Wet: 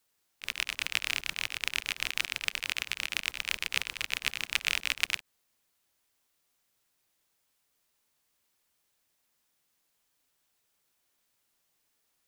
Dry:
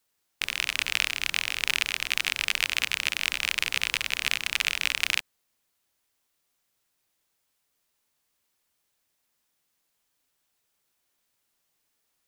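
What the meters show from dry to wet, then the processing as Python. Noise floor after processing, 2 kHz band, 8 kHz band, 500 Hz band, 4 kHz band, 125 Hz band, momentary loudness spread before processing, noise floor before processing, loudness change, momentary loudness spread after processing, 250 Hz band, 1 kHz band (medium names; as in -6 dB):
-76 dBFS, -5.5 dB, -5.5 dB, -4.5 dB, -5.5 dB, -4.0 dB, 2 LU, -76 dBFS, -5.5 dB, 4 LU, -4.0 dB, -5.0 dB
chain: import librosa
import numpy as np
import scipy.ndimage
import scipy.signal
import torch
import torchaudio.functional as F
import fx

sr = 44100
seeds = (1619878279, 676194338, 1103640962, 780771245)

y = fx.auto_swell(x, sr, attack_ms=111.0)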